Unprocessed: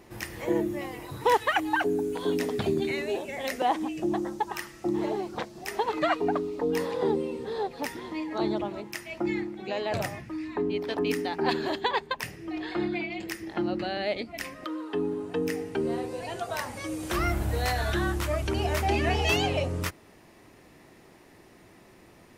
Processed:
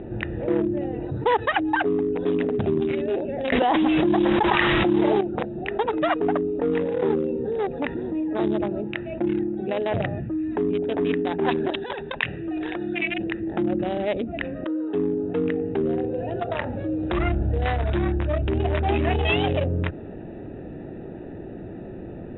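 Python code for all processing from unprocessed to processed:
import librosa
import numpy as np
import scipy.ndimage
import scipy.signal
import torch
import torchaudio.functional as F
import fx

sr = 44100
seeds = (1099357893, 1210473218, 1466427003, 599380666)

y = fx.chain(x, sr, fx.delta_mod(bps=64000, step_db=-33.0),
    fx.env_flatten(amount_pct=100), at=(3.52, 5.21))
y = fx.chain(y, sr, fx.over_compress(threshold_db=-32.0, ratio=-1.0),
    fx.tilt_shelf(db=-7.5, hz=1100.0), at=(11.7, 13.18))
y = fx.wiener(y, sr, points=41)
y = scipy.signal.sosfilt(scipy.signal.cheby1(10, 1.0, 3800.0, 'lowpass', fs=sr, output='sos'), y)
y = fx.env_flatten(y, sr, amount_pct=50)
y = y * 10.0 ** (2.0 / 20.0)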